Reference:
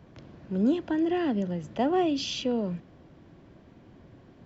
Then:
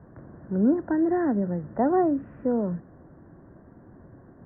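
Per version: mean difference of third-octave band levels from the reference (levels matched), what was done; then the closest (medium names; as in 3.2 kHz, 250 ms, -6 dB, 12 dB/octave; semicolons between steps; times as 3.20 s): 3.5 dB: steep low-pass 1.8 kHz 72 dB/octave; trim +3 dB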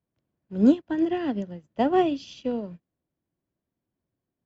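9.0 dB: upward expansion 2.5:1, over -47 dBFS; trim +8 dB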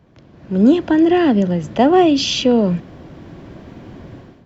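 2.0 dB: level rider gain up to 16.5 dB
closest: third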